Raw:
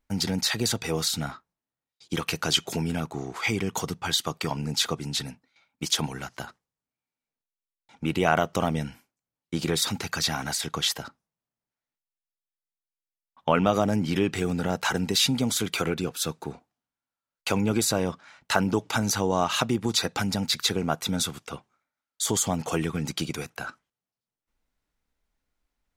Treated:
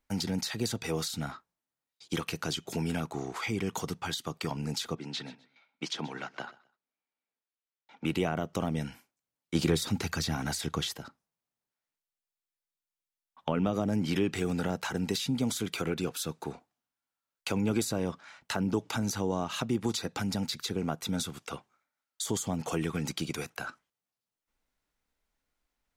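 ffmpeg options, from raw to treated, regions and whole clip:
-filter_complex "[0:a]asettb=1/sr,asplit=3[a][b][c];[a]atrim=end=4.954[d];[b]atrim=start=4.95:end=8.05,asetpts=PTS-STARTPTS,afade=t=in:d=0.004:c=qsin,afade=t=out:st=3.096:d=0.004:c=qsin,highpass=200,lowpass=3.7k,aecho=1:1:126|252:0.0841|0.0202,atrim=end_sample=136710[e];[c]atrim=start=8.046[f];[d][e]acrossfade=d=0.004:c1=hsin:c2=qsin[g];[g][f]acrossfade=d=0.004:c1=qsin:c2=hsin,asettb=1/sr,asplit=3[h][i][j];[h]atrim=end=9.554[k];[i]atrim=start=9.55:end=10.97,asetpts=PTS-STARTPTS,afade=t=in:d=0.004:c=qsin,afade=t=out:st=1.416:d=0.004:c=qsin,equalizer=f=82:w=4.6:g=6,acontrast=29,asoftclip=type=hard:threshold=-9dB[l];[j]atrim=start=10.966[m];[k][l]acrossfade=d=0.004:c1=hsin:c2=qsin[n];[n][m]acrossfade=d=0.004:c1=qsin:c2=hsin,lowshelf=f=260:g=-5.5,acrossover=split=390[o][p];[p]acompressor=threshold=-34dB:ratio=5[q];[o][q]amix=inputs=2:normalize=0"

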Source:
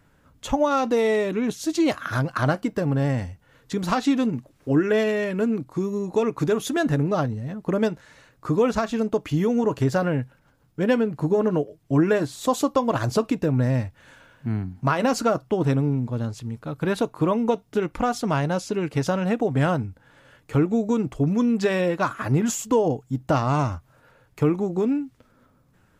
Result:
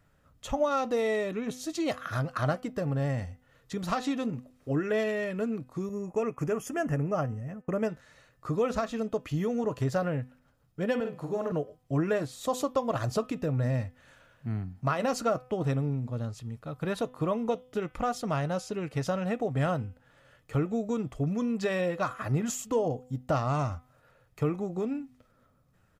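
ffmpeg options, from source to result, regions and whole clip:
-filter_complex "[0:a]asettb=1/sr,asplit=3[a][b][c];[a]atrim=end=5.894[d];[b]atrim=start=5.89:end=7.89,asetpts=PTS-STARTPTS,afade=t=in:d=0.004:c=qsin,afade=t=out:st=1.996:d=0.004:c=qsin,asuperstop=centerf=3900:order=4:qfactor=1.8,agate=range=-33dB:threshold=-33dB:ratio=3:release=100:detection=peak[e];[c]atrim=start=7.886[f];[d][e]acrossfade=d=0.004:c1=hsin:c2=qsin[g];[g][f]acrossfade=d=0.004:c1=qsin:c2=hsin,asettb=1/sr,asplit=3[h][i][j];[h]atrim=end=11.004[k];[i]atrim=start=11:end=11.52,asetpts=PTS-STARTPTS,afade=t=in:d=0.004:c=qsin,afade=t=out:st=0.516:d=0.004:c=qsin,lowshelf=f=280:g=-9,asplit=2[l][m];[m]adelay=49,volume=-5.5dB[n];[l][n]amix=inputs=2:normalize=0,atrim=end_sample=22932[o];[j]atrim=start=11.516[p];[k][o]acrossfade=d=0.004:c1=hsin:c2=qsin[q];[q][p]acrossfade=d=0.004:c1=qsin:c2=hsin,aecho=1:1:1.6:0.32,bandreject=f=252.6:t=h:w=4,bandreject=f=505.2:t=h:w=4,bandreject=f=757.8:t=h:w=4,bandreject=f=1.0104k:t=h:w=4,bandreject=f=1.263k:t=h:w=4,bandreject=f=1.5156k:t=h:w=4,bandreject=f=1.7682k:t=h:w=4,bandreject=f=2.0208k:t=h:w=4,bandreject=f=2.2734k:t=h:w=4,bandreject=f=2.526k:t=h:w=4,bandreject=f=2.7786k:t=h:w=4,bandreject=f=3.0312k:t=h:w=4,bandreject=f=3.2838k:t=h:w=4,bandreject=f=3.5364k:t=h:w=4,volume=-7dB"

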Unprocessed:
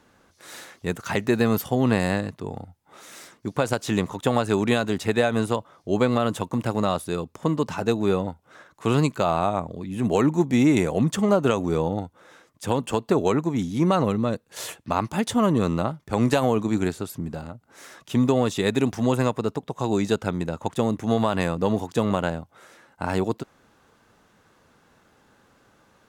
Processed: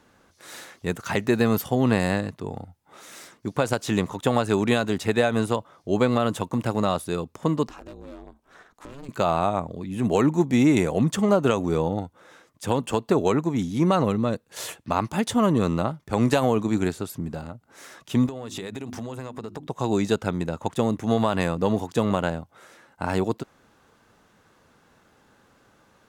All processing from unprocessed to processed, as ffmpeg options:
-filter_complex "[0:a]asettb=1/sr,asplit=3[a][b][c];[a]atrim=end=7.684[d];[b]atrim=start=7.68:end=9.09,asetpts=PTS-STARTPTS,afade=t=in:d=0.004:c=qsin,afade=t=out:st=1.406:d=0.004:c=qsin,volume=18.5dB,asoftclip=hard,volume=-18.5dB,acompressor=threshold=-37dB:ratio=6:attack=3.2:release=140:knee=1:detection=peak,aeval=exprs='val(0)*sin(2*PI*140*n/s)':c=same[e];[c]atrim=start=9.086[f];[d][e]acrossfade=d=0.004:c1=hsin:c2=qsin[g];[g][f]acrossfade=d=0.004:c1=qsin:c2=hsin,asettb=1/sr,asplit=3[h][i][j];[h]atrim=end=18.264[k];[i]atrim=start=18.26:end=19.67,asetpts=PTS-STARTPTS,afade=t=in:d=0.004:c=qsin,afade=t=out:st=1.406:d=0.004:c=qsin,bandreject=f=50:t=h:w=6,bandreject=f=100:t=h:w=6,bandreject=f=150:t=h:w=6,bandreject=f=200:t=h:w=6,bandreject=f=250:t=h:w=6,bandreject=f=300:t=h:w=6,bandreject=f=350:t=h:w=6,acompressor=threshold=-29dB:ratio=16:attack=3.2:release=140:knee=1:detection=peak[l];[j]atrim=start=19.666[m];[k][l]acrossfade=d=0.004:c1=hsin:c2=qsin[n];[n][m]acrossfade=d=0.004:c1=qsin:c2=hsin"

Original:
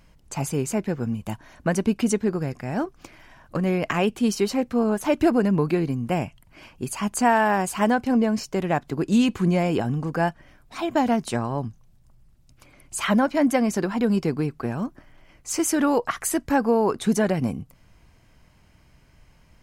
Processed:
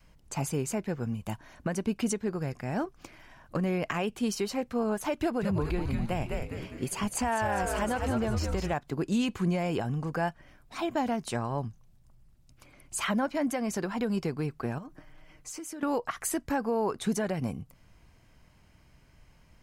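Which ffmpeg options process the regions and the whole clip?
-filter_complex "[0:a]asettb=1/sr,asplit=3[a][b][c];[a]atrim=end=5.204[d];[b]atrim=start=5.2:end=8.74,asetpts=PTS-STARTPTS,afade=t=in:d=0.004:c=qsin,afade=t=out:st=3.536:d=0.004:c=qsin,equalizer=f=3.4k:w=5.2:g=5,asplit=7[e][f][g][h][i][j][k];[f]adelay=203,afreqshift=-140,volume=-5dB[l];[g]adelay=406,afreqshift=-280,volume=-10.8dB[m];[h]adelay=609,afreqshift=-420,volume=-16.7dB[n];[i]adelay=812,afreqshift=-560,volume=-22.5dB[o];[j]adelay=1015,afreqshift=-700,volume=-28.4dB[p];[k]adelay=1218,afreqshift=-840,volume=-34.2dB[q];[e][l][m][n][o][p][q]amix=inputs=7:normalize=0,atrim=end_sample=156114[r];[c]atrim=start=8.736[s];[d][r]acrossfade=d=0.004:c1=hsin:c2=qsin[t];[t][s]acrossfade=d=0.004:c1=qsin:c2=hsin,asettb=1/sr,asplit=3[u][v][w];[u]atrim=end=14.784[x];[v]atrim=start=14.78:end=15.83,asetpts=PTS-STARTPTS,afade=t=in:d=0.004:c=qsin,afade=t=out:st=1.046:d=0.004:c=qsin,aecho=1:1:6.5:0.54,atrim=end_sample=46305,acompressor=threshold=-34dB:ratio=10:attack=3.2:release=140:knee=1:detection=peak[y];[w]atrim=start=15.826[z];[x][y]acrossfade=d=0.004:c1=hsin:c2=qsin[aa];[aa][z]acrossfade=d=0.004:c1=qsin:c2=hsin,adynamicequalizer=threshold=0.0178:dfrequency=270:dqfactor=1.3:tfrequency=270:tqfactor=1.3:attack=5:release=100:ratio=0.375:range=2.5:mode=cutabove:tftype=bell,alimiter=limit=-16dB:level=0:latency=1:release=210,volume=-3.5dB"

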